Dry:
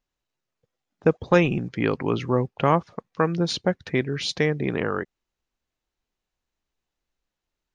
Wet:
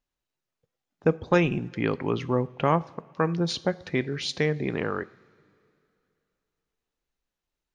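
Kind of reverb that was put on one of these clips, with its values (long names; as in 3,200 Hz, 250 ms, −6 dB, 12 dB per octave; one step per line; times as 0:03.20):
coupled-rooms reverb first 0.48 s, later 2.8 s, from −17 dB, DRR 15.5 dB
level −3 dB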